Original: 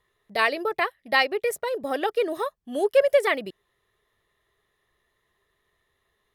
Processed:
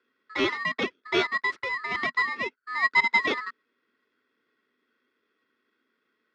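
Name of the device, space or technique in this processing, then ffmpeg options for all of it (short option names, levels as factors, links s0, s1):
ring modulator pedal into a guitar cabinet: -af "aeval=exprs='val(0)*sgn(sin(2*PI*1500*n/s))':c=same,highpass=92,equalizer=f=160:t=q:w=4:g=-5,equalizer=f=240:t=q:w=4:g=8,equalizer=f=410:t=q:w=4:g=5,equalizer=f=800:t=q:w=4:g=-8,equalizer=f=1300:t=q:w=4:g=10,equalizer=f=1900:t=q:w=4:g=8,lowpass=f=4500:w=0.5412,lowpass=f=4500:w=1.3066,equalizer=f=380:t=o:w=2.1:g=5,volume=0.422"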